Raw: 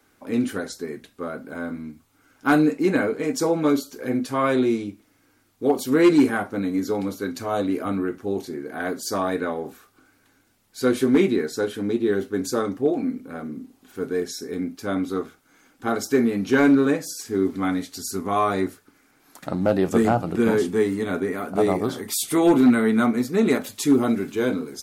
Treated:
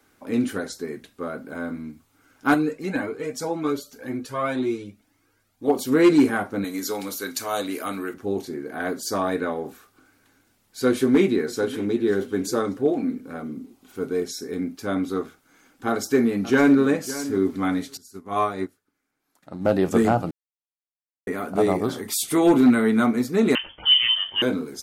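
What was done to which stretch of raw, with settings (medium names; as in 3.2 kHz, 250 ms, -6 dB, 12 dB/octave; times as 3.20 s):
2.54–5.68 s: Shepard-style flanger rising 1.9 Hz
6.64–8.14 s: tilt EQ +3.5 dB/octave
10.88–11.97 s: echo throw 590 ms, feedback 40%, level -17 dB
13.39–14.37 s: band-stop 1.7 kHz, Q 7.9
15.88–16.82 s: echo throw 560 ms, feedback 15%, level -14.5 dB
17.97–19.65 s: upward expansion 2.5:1, over -31 dBFS
20.31–21.27 s: mute
23.55–24.42 s: frequency inversion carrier 3.3 kHz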